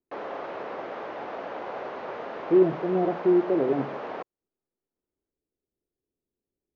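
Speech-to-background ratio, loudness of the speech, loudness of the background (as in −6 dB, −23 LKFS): 12.0 dB, −24.0 LKFS, −36.0 LKFS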